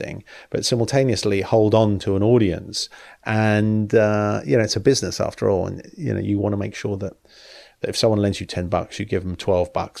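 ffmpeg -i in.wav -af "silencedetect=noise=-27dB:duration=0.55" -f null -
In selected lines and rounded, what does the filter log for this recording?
silence_start: 7.09
silence_end: 7.84 | silence_duration: 0.75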